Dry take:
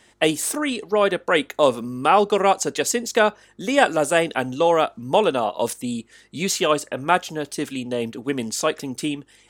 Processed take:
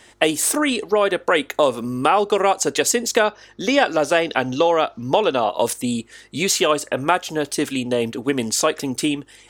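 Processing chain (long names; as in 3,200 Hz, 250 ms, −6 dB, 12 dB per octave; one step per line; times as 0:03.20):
0:03.24–0:05.49: high shelf with overshoot 6,700 Hz −6.5 dB, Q 3
downward compressor 3 to 1, threshold −21 dBFS, peak gain reduction 8.5 dB
parametric band 180 Hz −6.5 dB 0.57 octaves
level +6.5 dB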